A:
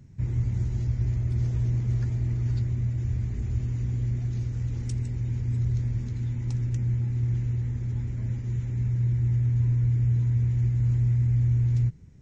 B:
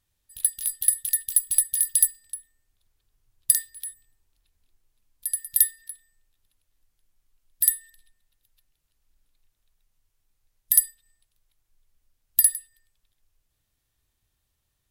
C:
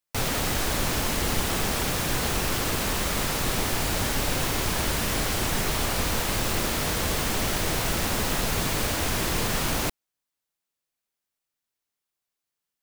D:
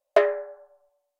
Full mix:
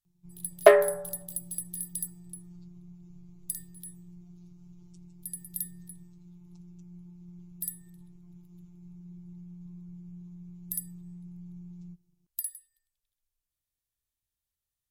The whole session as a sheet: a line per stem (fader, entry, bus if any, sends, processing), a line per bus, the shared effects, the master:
-16.5 dB, 0.05 s, no send, robot voice 176 Hz; static phaser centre 360 Hz, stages 8
-18.0 dB, 0.00 s, no send, treble shelf 4.5 kHz +9.5 dB; compression 2:1, threshold -18 dBFS, peak gain reduction 8.5 dB
mute
+3.0 dB, 0.50 s, no send, none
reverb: none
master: none

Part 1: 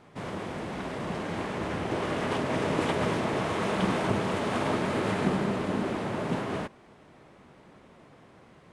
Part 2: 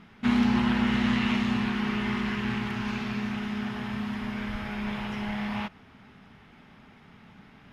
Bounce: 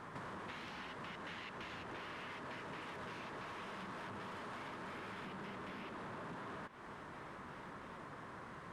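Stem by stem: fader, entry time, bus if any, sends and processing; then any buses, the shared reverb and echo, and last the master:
+1.5 dB, 0.00 s, no send, high-order bell 1.3 kHz +8 dB 1.2 oct; compression 2.5:1, threshold -39 dBFS, peak gain reduction 12.5 dB; saturation -35 dBFS, distortion -13 dB
-5.0 dB, 0.25 s, no send, high-pass 1.1 kHz 12 dB/octave; trance gate "x.xxxx.x.xx.x" 133 bpm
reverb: none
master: compression 12:1, threshold -45 dBFS, peak gain reduction 13 dB

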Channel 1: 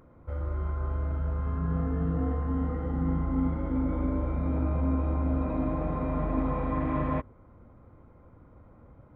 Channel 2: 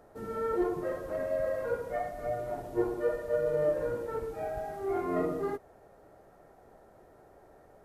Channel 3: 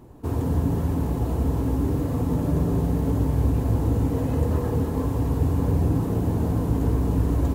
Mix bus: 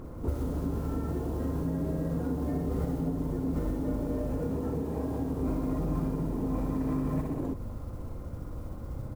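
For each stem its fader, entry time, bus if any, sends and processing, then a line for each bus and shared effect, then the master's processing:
+1.0 dB, 0.00 s, no send, echo send -5 dB, tilt EQ -2 dB/octave; compressor with a negative ratio -26 dBFS, ratio -0.5; modulation noise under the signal 29 dB
-7.5 dB, 0.55 s, no send, no echo send, none
-5.0 dB, 0.00 s, no send, no echo send, high-pass 240 Hz 12 dB/octave; tilt shelf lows +7.5 dB, about 740 Hz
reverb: none
echo: feedback delay 61 ms, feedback 59%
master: compression 3:1, threshold -29 dBFS, peak gain reduction 9.5 dB

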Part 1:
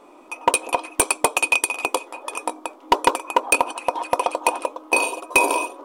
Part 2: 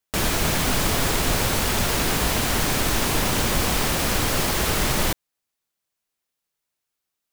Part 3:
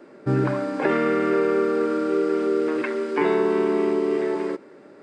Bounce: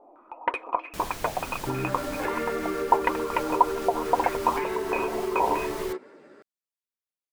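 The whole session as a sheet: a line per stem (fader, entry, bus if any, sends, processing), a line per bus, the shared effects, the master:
-6.5 dB, 0.00 s, no bus, no send, flange 1.9 Hz, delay 2.1 ms, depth 7.9 ms, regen +57%; step-sequenced low-pass 6.3 Hz 730–2200 Hz
-16.5 dB, 0.80 s, bus A, no send, none
+1.5 dB, 1.40 s, bus A, no send, bass shelf 370 Hz -7 dB; chorus voices 4, 0.8 Hz, delay 12 ms, depth 4.1 ms
bus A: 0.0 dB, compression, threshold -26 dBFS, peak gain reduction 7.5 dB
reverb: none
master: none

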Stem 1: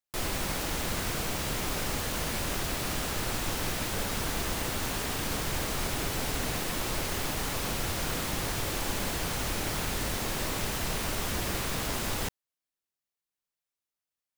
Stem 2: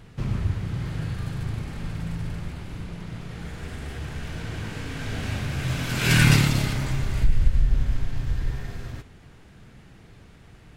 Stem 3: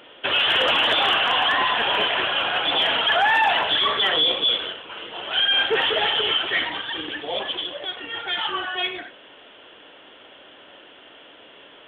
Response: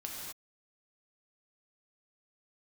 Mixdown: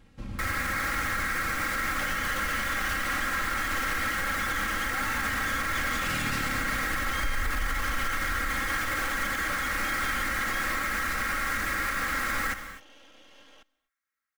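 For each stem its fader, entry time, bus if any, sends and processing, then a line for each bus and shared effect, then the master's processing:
-6.0 dB, 0.25 s, send -6.5 dB, high-order bell 1.6 kHz +15.5 dB 1.1 oct
-10.0 dB, 0.00 s, no send, none
-6.0 dB, 1.75 s, send -20.5 dB, compression, threshold -30 dBFS, peak gain reduction 14 dB; half-wave rectifier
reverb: on, pre-delay 3 ms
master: comb 3.7 ms, depth 71%; peak limiter -19.5 dBFS, peak gain reduction 9 dB

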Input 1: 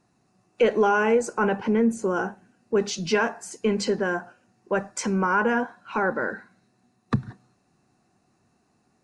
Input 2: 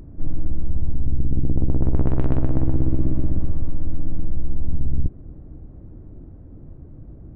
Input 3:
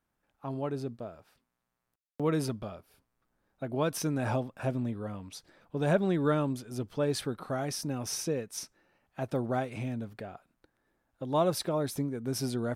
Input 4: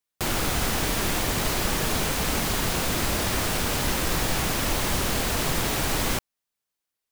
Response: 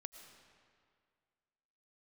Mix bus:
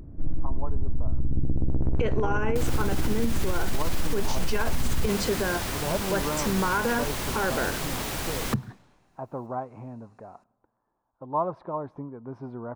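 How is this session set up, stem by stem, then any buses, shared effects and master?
-2.0 dB, 1.40 s, no send, none
-2.5 dB, 0.00 s, no send, none
-6.5 dB, 0.00 s, send -17.5 dB, resonant low-pass 1 kHz, resonance Q 4.9
-7.0 dB, 2.35 s, send -10.5 dB, upward compressor, threshold -55 dBFS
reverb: on, RT60 2.1 s, pre-delay 70 ms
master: peak limiter -15.5 dBFS, peak gain reduction 9.5 dB

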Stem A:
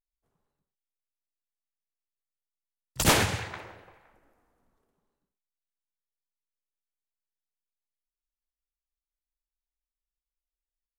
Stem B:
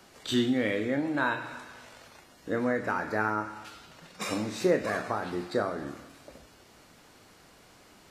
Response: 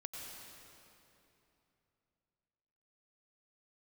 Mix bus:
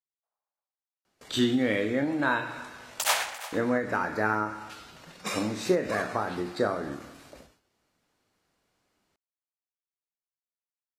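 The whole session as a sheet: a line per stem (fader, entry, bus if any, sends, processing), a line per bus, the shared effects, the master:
-0.5 dB, 0.00 s, no send, echo send -16.5 dB, local Wiener filter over 15 samples; steep high-pass 610 Hz 36 dB/octave; random-step tremolo, depth 55%
+2.0 dB, 1.05 s, no send, no echo send, gate with hold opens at -42 dBFS; endings held to a fixed fall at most 120 dB/s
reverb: none
echo: delay 345 ms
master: none

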